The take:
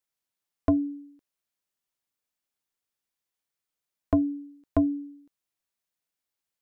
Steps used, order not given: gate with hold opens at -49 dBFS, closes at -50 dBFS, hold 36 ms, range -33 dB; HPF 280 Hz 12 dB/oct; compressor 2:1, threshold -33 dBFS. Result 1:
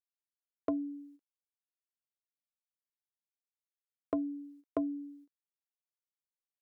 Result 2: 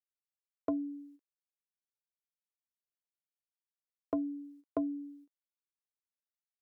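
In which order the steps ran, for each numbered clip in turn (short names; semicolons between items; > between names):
gate with hold > compressor > HPF; compressor > gate with hold > HPF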